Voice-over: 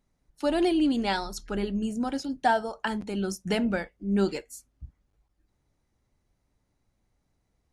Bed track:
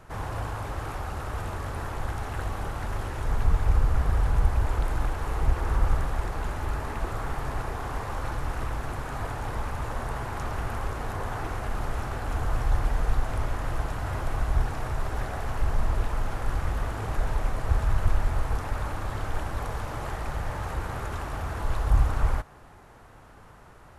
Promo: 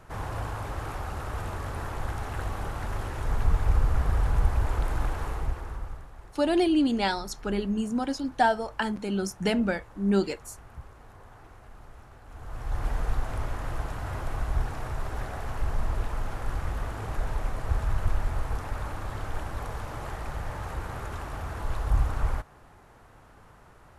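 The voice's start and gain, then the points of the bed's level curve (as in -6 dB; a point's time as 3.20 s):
5.95 s, +1.0 dB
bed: 5.22 s -1 dB
6.09 s -18.5 dB
12.25 s -18.5 dB
12.87 s -3 dB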